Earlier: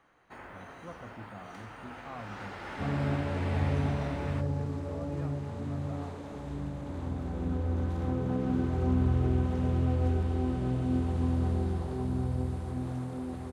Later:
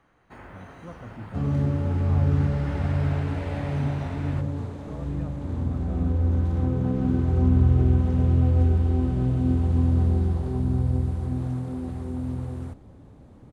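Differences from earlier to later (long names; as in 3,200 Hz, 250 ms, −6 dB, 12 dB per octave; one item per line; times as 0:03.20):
second sound: entry −1.45 s
master: add low-shelf EQ 250 Hz +10 dB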